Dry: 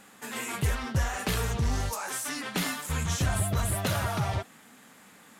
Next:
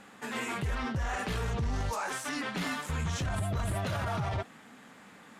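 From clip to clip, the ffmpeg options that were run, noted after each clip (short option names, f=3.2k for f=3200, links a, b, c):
-af "aemphasis=mode=reproduction:type=50fm,alimiter=level_in=3dB:limit=-24dB:level=0:latency=1:release=11,volume=-3dB,volume=2dB"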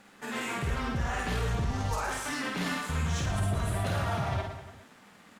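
-filter_complex "[0:a]aeval=exprs='sgn(val(0))*max(abs(val(0))-0.00126,0)':c=same,asplit=2[a][b];[b]aecho=0:1:50|112.5|190.6|288.3|410.4:0.631|0.398|0.251|0.158|0.1[c];[a][c]amix=inputs=2:normalize=0"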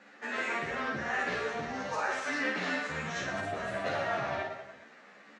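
-filter_complex "[0:a]highpass=300,equalizer=f=560:t=q:w=4:g=4,equalizer=f=950:t=q:w=4:g=-5,equalizer=f=1.8k:t=q:w=4:g=5,equalizer=f=3.3k:t=q:w=4:g=-6,equalizer=f=4.9k:t=q:w=4:g=-5,lowpass=f=5.7k:w=0.5412,lowpass=f=5.7k:w=1.3066,asplit=2[a][b];[b]adelay=14,volume=-11dB[c];[a][c]amix=inputs=2:normalize=0,asplit=2[d][e];[e]adelay=11.6,afreqshift=2.1[f];[d][f]amix=inputs=2:normalize=1,volume=4dB"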